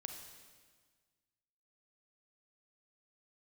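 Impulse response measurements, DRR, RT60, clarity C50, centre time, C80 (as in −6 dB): 4.5 dB, 1.6 s, 5.0 dB, 39 ms, 7.0 dB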